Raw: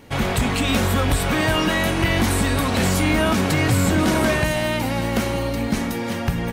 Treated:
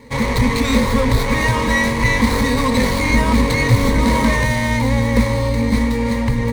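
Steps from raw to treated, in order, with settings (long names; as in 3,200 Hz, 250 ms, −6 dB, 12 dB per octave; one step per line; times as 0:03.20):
sub-octave generator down 2 octaves, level −3 dB
EQ curve with evenly spaced ripples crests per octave 0.97, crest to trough 18 dB
windowed peak hold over 5 samples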